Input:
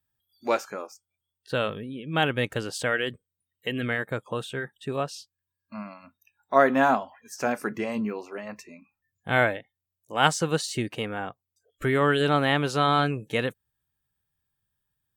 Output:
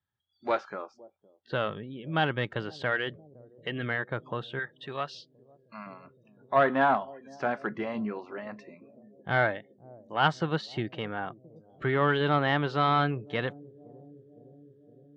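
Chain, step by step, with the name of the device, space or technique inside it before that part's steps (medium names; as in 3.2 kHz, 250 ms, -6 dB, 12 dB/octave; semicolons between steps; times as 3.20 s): analogue delay pedal into a guitar amplifier (bucket-brigade echo 512 ms, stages 2048, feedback 73%, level -21.5 dB; valve stage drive 11 dB, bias 0.25; cabinet simulation 96–3700 Hz, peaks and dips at 250 Hz -6 dB, 480 Hz -5 dB, 2.5 kHz -8 dB); 4.59–5.87 s: tilt shelf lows -7.5 dB, about 1.1 kHz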